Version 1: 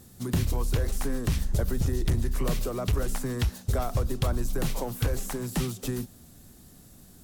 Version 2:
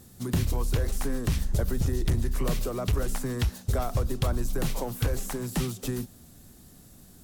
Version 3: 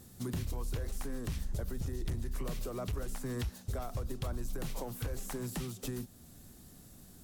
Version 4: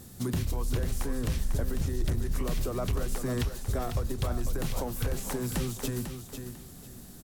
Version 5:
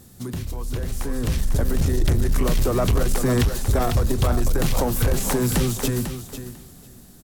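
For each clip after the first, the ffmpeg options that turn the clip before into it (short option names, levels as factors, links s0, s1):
-af anull
-af "alimiter=level_in=1.19:limit=0.0631:level=0:latency=1:release=332,volume=0.841,volume=0.708"
-af "aecho=1:1:497|994|1491:0.398|0.0995|0.0249,volume=2.11"
-af "dynaudnorm=f=250:g=11:m=4.47,asoftclip=type=tanh:threshold=0.237"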